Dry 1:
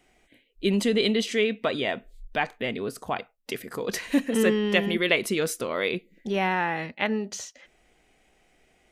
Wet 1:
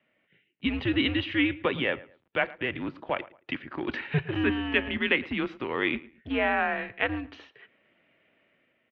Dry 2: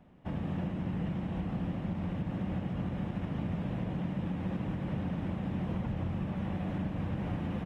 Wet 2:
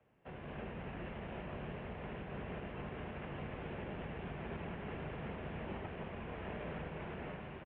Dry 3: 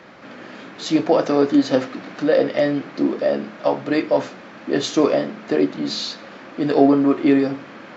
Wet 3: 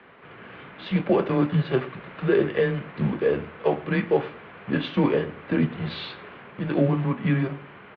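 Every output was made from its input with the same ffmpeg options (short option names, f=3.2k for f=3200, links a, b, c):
-filter_complex "[0:a]highshelf=f=2.4k:g=6,dynaudnorm=f=140:g=7:m=5.5dB,asplit=2[a][b];[b]acrusher=bits=4:dc=4:mix=0:aa=0.000001,volume=-11.5dB[c];[a][c]amix=inputs=2:normalize=0,highpass=f=280:t=q:w=0.5412,highpass=f=280:t=q:w=1.307,lowpass=f=3.2k:t=q:w=0.5176,lowpass=f=3.2k:t=q:w=0.7071,lowpass=f=3.2k:t=q:w=1.932,afreqshift=-130,asplit=2[d][e];[e]adelay=111,lowpass=f=2.1k:p=1,volume=-18.5dB,asplit=2[f][g];[g]adelay=111,lowpass=f=2.1k:p=1,volume=0.29[h];[f][h]amix=inputs=2:normalize=0[i];[d][i]amix=inputs=2:normalize=0,asoftclip=type=hard:threshold=-0.5dB,volume=-8dB"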